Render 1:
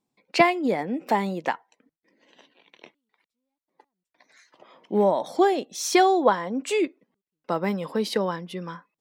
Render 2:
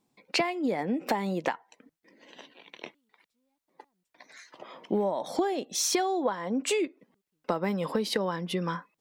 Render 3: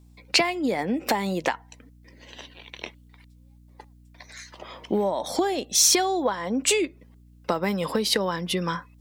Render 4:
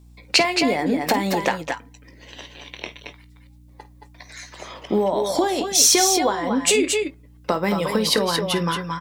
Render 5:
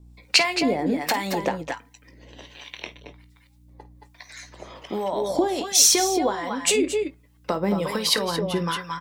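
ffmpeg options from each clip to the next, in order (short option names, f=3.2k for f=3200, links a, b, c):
-af "acompressor=threshold=-31dB:ratio=8,volume=6dB"
-af "highshelf=f=2.6k:g=8.5,aeval=exprs='val(0)+0.002*(sin(2*PI*60*n/s)+sin(2*PI*2*60*n/s)/2+sin(2*PI*3*60*n/s)/3+sin(2*PI*4*60*n/s)/4+sin(2*PI*5*60*n/s)/5)':c=same,volume=3dB"
-filter_complex "[0:a]asplit=2[a][b];[b]adelay=19,volume=-13dB[c];[a][c]amix=inputs=2:normalize=0,aecho=1:1:51|220|227:0.178|0.316|0.447,volume=3dB"
-filter_complex "[0:a]acrossover=split=780[a][b];[a]aeval=exprs='val(0)*(1-0.7/2+0.7/2*cos(2*PI*1.3*n/s))':c=same[c];[b]aeval=exprs='val(0)*(1-0.7/2-0.7/2*cos(2*PI*1.3*n/s))':c=same[d];[c][d]amix=inputs=2:normalize=0"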